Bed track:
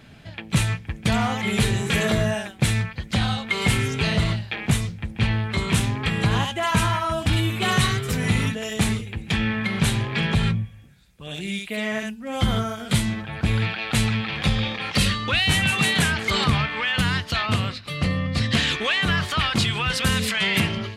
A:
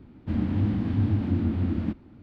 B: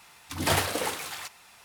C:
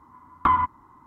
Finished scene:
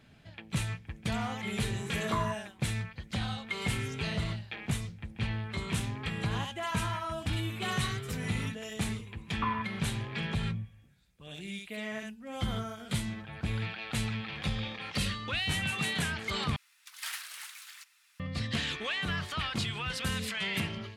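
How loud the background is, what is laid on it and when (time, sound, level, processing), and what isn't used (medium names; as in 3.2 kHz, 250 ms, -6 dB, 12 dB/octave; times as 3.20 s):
bed track -11.5 dB
1.67 s: add C -14.5 dB
8.97 s: add C -13.5 dB
16.56 s: replace with B -10.5 dB + high-pass 1.4 kHz 24 dB/octave
not used: A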